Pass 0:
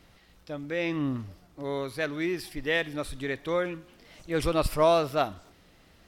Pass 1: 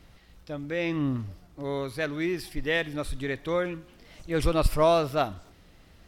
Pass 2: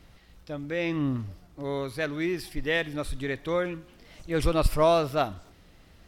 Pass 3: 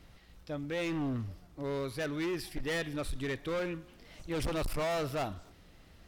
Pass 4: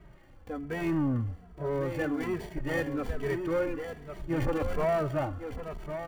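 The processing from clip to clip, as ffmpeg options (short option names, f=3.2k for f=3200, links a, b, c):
-af "lowshelf=f=120:g=8"
-af anull
-af "asoftclip=type=hard:threshold=-28dB,volume=-2.5dB"
-filter_complex "[0:a]acrossover=split=480|2300[a][b][c];[c]acrusher=samples=34:mix=1:aa=0.000001[d];[a][b][d]amix=inputs=3:normalize=0,aecho=1:1:1105:0.376,asplit=2[e][f];[f]adelay=2.7,afreqshift=-1.2[g];[e][g]amix=inputs=2:normalize=1,volume=7dB"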